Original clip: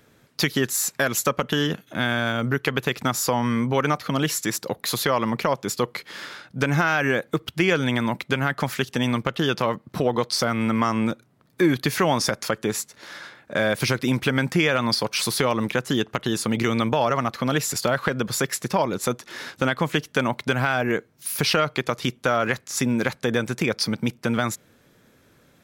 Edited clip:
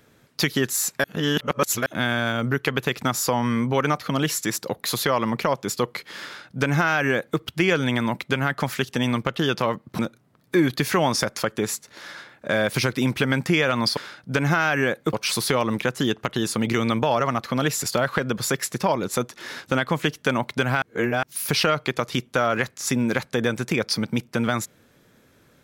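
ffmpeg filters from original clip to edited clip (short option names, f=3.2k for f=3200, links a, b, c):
-filter_complex "[0:a]asplit=8[a][b][c][d][e][f][g][h];[a]atrim=end=1.042[i];[b]atrim=start=1.038:end=1.862,asetpts=PTS-STARTPTS,areverse[j];[c]atrim=start=1.858:end=9.992[k];[d]atrim=start=11.048:end=15.032[l];[e]atrim=start=6.238:end=7.402[m];[f]atrim=start=15.028:end=20.722[n];[g]atrim=start=20.718:end=21.132,asetpts=PTS-STARTPTS,areverse[o];[h]atrim=start=21.128[p];[i][j]acrossfade=d=0.004:c1=hsin:c2=hsin[q];[q][k]acrossfade=d=0.004:c1=hsin:c2=hsin[r];[r][l]acrossfade=d=0.004:c1=hsin:c2=hsin[s];[s][m]acrossfade=d=0.004:c1=hsin:c2=hsin[t];[t][n]acrossfade=d=0.004:c1=hsin:c2=hsin[u];[u][o]acrossfade=d=0.004:c1=hsin:c2=hsin[v];[v][p]acrossfade=d=0.004:c1=hsin:c2=hsin"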